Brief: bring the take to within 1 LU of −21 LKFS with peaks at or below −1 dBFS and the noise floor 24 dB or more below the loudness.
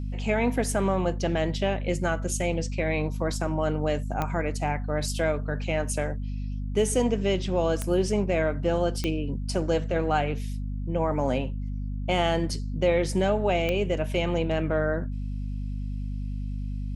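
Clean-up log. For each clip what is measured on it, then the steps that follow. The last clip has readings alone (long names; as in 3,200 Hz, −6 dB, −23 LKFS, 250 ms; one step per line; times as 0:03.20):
number of clicks 4; mains hum 50 Hz; hum harmonics up to 250 Hz; level of the hum −28 dBFS; integrated loudness −27.5 LKFS; sample peak −11.0 dBFS; target loudness −21.0 LKFS
→ click removal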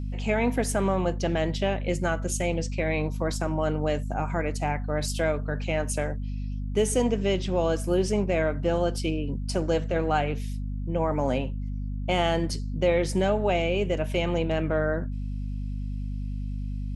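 number of clicks 0; mains hum 50 Hz; hum harmonics up to 250 Hz; level of the hum −28 dBFS
→ mains-hum notches 50/100/150/200/250 Hz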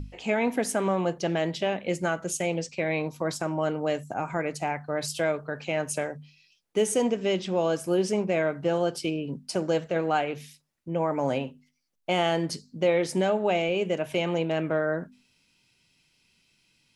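mains hum none found; integrated loudness −28.0 LKFS; sample peak −12.5 dBFS; target loudness −21.0 LKFS
→ level +7 dB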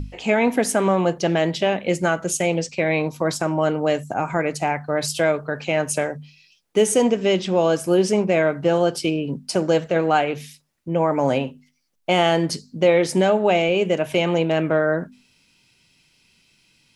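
integrated loudness −21.0 LKFS; sample peak −5.5 dBFS; background noise floor −62 dBFS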